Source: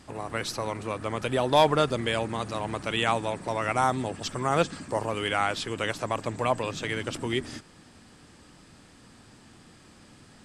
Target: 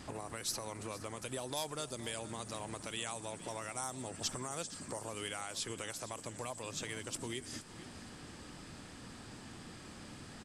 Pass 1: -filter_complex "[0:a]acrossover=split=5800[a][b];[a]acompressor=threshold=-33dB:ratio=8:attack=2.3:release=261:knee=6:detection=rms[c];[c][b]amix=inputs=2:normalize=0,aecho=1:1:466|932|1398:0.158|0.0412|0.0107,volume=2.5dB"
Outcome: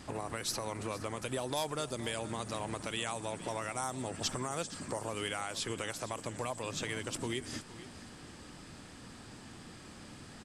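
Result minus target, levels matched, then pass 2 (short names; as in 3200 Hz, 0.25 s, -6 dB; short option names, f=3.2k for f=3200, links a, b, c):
compressor: peak gain reduction -5 dB
-filter_complex "[0:a]acrossover=split=5800[a][b];[a]acompressor=threshold=-39dB:ratio=8:attack=2.3:release=261:knee=6:detection=rms[c];[c][b]amix=inputs=2:normalize=0,aecho=1:1:466|932|1398:0.158|0.0412|0.0107,volume=2.5dB"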